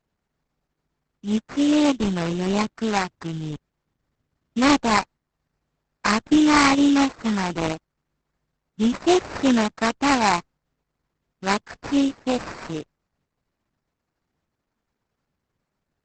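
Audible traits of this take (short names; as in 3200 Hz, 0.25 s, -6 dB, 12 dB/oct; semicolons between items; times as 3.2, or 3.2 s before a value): aliases and images of a low sample rate 3300 Hz, jitter 20%; Opus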